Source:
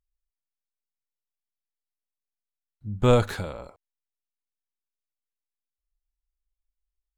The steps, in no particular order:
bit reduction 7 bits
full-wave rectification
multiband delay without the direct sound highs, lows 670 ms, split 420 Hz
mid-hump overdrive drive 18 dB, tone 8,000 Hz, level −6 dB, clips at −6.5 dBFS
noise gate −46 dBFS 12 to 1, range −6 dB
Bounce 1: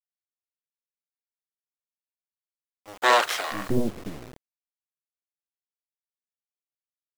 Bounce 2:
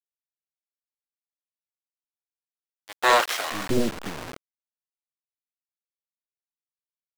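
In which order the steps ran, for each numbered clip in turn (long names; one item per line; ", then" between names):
full-wave rectification, then mid-hump overdrive, then multiband delay without the direct sound, then bit reduction, then noise gate
full-wave rectification, then multiband delay without the direct sound, then bit reduction, then mid-hump overdrive, then noise gate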